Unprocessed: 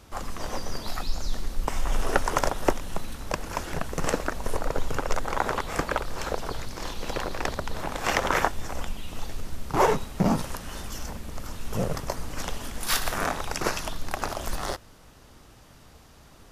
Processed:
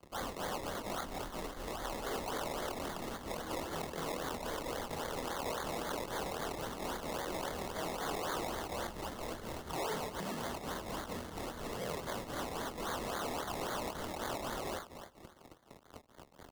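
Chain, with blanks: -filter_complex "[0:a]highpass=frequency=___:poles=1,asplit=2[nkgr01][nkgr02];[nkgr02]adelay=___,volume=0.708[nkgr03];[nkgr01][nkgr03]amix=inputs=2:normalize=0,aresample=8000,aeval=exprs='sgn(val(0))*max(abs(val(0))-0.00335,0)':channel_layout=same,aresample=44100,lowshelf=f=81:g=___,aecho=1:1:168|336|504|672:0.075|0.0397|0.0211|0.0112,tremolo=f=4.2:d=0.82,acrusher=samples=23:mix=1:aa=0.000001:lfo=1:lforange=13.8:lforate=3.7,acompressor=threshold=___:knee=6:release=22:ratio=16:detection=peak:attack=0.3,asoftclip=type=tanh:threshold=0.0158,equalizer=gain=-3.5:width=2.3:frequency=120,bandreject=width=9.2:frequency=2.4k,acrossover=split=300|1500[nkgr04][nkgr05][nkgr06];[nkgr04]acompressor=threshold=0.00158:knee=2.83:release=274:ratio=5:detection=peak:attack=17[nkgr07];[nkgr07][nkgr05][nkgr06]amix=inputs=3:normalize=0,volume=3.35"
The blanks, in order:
51, 25, -9, 0.00708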